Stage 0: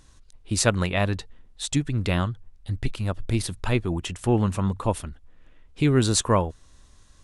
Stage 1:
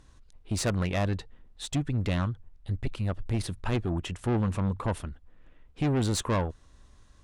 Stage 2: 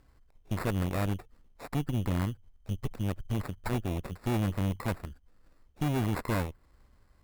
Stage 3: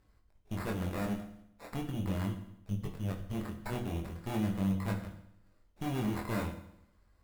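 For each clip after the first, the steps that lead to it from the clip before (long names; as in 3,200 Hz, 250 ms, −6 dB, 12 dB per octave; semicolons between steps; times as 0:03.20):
high-shelf EQ 3,500 Hz −9 dB; tube saturation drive 22 dB, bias 0.35
sample-rate reduction 3,100 Hz, jitter 0%; harmonic generator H 4 −7 dB, 6 −19 dB, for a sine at −18.5 dBFS; dynamic equaliser 5,400 Hz, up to −7 dB, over −51 dBFS, Q 1; level −5.5 dB
chorus effect 0.39 Hz, delay 20 ms, depth 4.6 ms; on a send at −4.5 dB: convolution reverb RT60 0.80 s, pre-delay 5 ms; on the sum: level −2.5 dB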